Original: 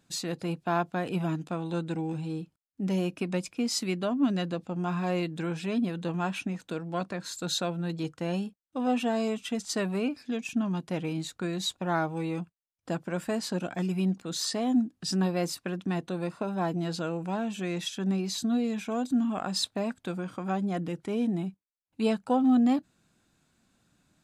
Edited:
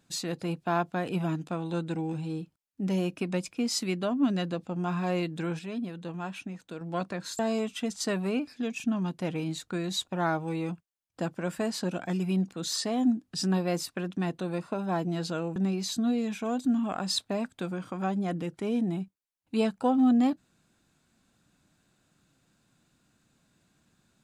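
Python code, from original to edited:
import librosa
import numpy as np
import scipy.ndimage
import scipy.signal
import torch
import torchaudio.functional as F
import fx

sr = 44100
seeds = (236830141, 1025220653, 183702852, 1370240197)

y = fx.edit(x, sr, fx.clip_gain(start_s=5.59, length_s=1.22, db=-6.0),
    fx.cut(start_s=7.39, length_s=1.69),
    fx.cut(start_s=17.25, length_s=0.77), tone=tone)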